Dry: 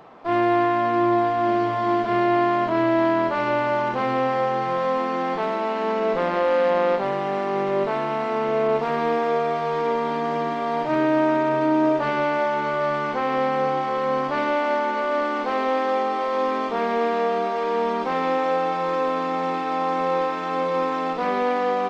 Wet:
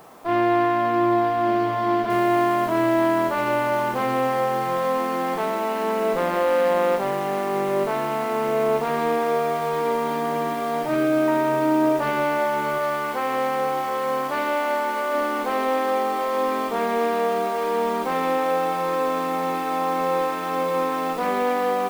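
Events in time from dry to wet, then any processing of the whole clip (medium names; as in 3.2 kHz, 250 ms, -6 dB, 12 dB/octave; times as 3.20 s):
2.10 s: noise floor step -58 dB -46 dB
10.55–11.28 s: de-hum 85.01 Hz, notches 35
12.78–15.14 s: bass shelf 250 Hz -8.5 dB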